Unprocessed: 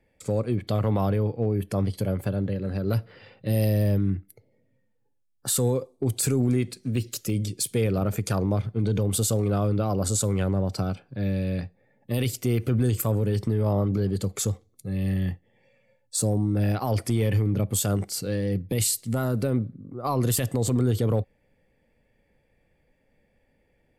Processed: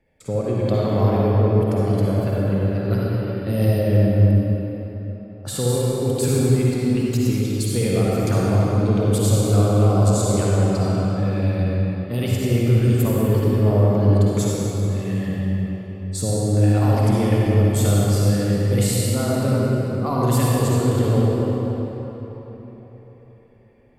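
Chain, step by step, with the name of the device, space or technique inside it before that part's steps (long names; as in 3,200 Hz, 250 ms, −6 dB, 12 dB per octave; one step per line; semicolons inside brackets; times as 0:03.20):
swimming-pool hall (convolution reverb RT60 4.2 s, pre-delay 49 ms, DRR −6 dB; high-shelf EQ 5,500 Hz −6 dB)
0:03.80–0:05.69: high-shelf EQ 7,400 Hz −5.5 dB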